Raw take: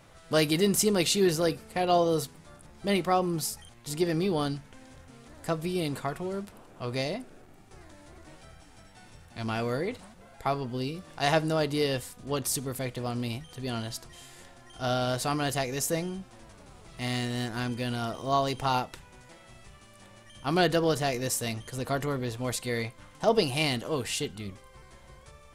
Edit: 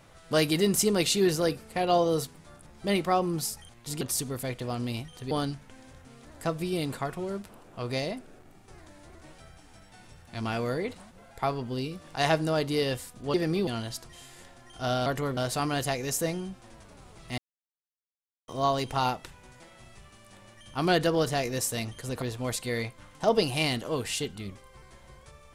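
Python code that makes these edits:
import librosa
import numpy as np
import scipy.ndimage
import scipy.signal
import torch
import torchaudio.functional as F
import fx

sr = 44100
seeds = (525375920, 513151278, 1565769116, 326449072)

y = fx.edit(x, sr, fx.swap(start_s=4.01, length_s=0.33, other_s=12.37, other_length_s=1.3),
    fx.silence(start_s=17.07, length_s=1.1),
    fx.move(start_s=21.91, length_s=0.31, to_s=15.06), tone=tone)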